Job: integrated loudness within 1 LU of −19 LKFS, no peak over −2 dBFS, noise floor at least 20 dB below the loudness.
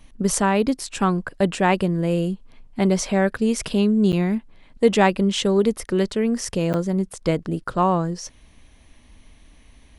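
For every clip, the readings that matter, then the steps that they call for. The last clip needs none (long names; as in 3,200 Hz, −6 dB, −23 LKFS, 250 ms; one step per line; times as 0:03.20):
number of dropouts 2; longest dropout 8.9 ms; integrated loudness −21.5 LKFS; sample peak −3.5 dBFS; target loudness −19.0 LKFS
→ repair the gap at 0:04.12/0:06.73, 8.9 ms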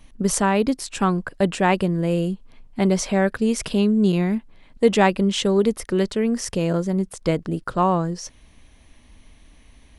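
number of dropouts 0; integrated loudness −21.5 LKFS; sample peak −3.5 dBFS; target loudness −19.0 LKFS
→ level +2.5 dB
brickwall limiter −2 dBFS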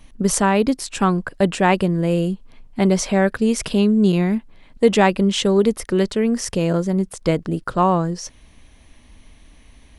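integrated loudness −19.0 LKFS; sample peak −2.0 dBFS; background noise floor −49 dBFS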